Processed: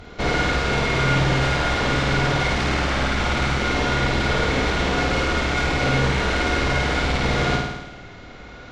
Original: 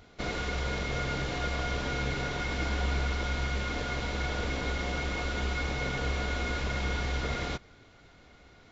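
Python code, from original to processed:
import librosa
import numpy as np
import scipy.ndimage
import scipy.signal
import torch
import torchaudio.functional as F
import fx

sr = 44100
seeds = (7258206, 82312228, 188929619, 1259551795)

y = fx.high_shelf(x, sr, hz=5200.0, db=-9.0)
y = fx.fold_sine(y, sr, drive_db=10, ceiling_db=-18.5)
y = fx.room_flutter(y, sr, wall_m=9.0, rt60_s=1.0)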